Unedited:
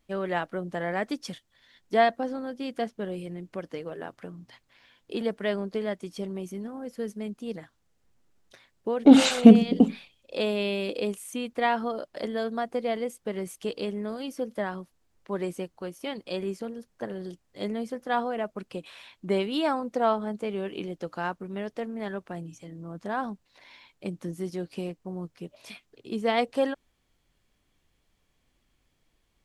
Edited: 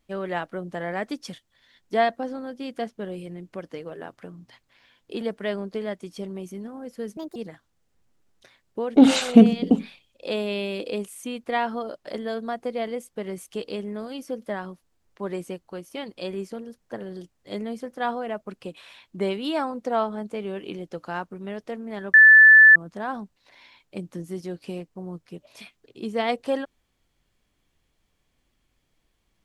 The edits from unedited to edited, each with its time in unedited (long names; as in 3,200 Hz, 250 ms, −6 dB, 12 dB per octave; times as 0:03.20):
0:07.17–0:07.45: play speed 149%
0:22.23–0:22.85: beep over 1,750 Hz −7.5 dBFS